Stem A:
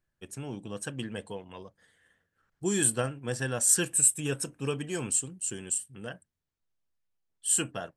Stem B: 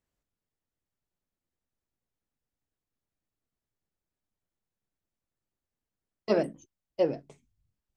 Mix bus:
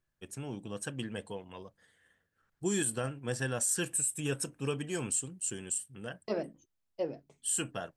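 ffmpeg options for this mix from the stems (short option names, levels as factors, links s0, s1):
-filter_complex "[0:a]alimiter=limit=0.112:level=0:latency=1:release=82,volume=0.794,asplit=2[s0][s1];[1:a]volume=0.944[s2];[s1]apad=whole_len=351371[s3];[s2][s3]sidechaingate=range=0.398:threshold=0.00112:ratio=16:detection=peak[s4];[s0][s4]amix=inputs=2:normalize=0"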